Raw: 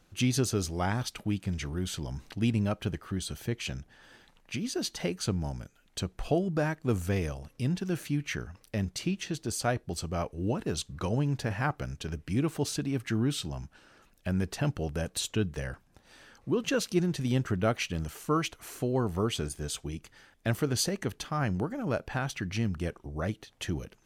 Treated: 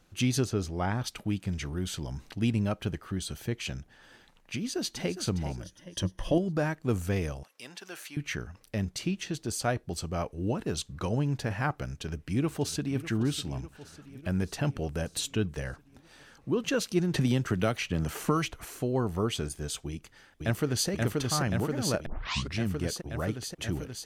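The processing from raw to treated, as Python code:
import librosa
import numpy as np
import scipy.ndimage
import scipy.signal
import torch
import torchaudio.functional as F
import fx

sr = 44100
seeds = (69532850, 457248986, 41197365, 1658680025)

y = fx.high_shelf(x, sr, hz=4500.0, db=-11.5, at=(0.44, 1.04))
y = fx.echo_throw(y, sr, start_s=4.55, length_s=0.56, ms=410, feedback_pct=40, wet_db=-11.0)
y = fx.ripple_eq(y, sr, per_octave=1.2, db=12, at=(5.62, 6.38))
y = fx.highpass(y, sr, hz=750.0, slope=12, at=(7.43, 8.17))
y = fx.echo_throw(y, sr, start_s=11.83, length_s=1.16, ms=600, feedback_pct=65, wet_db=-14.5)
y = fx.band_squash(y, sr, depth_pct=100, at=(17.14, 18.65))
y = fx.echo_throw(y, sr, start_s=19.87, length_s=1.02, ms=530, feedback_pct=80, wet_db=-2.0)
y = fx.edit(y, sr, fx.tape_start(start_s=22.06, length_s=0.52), tone=tone)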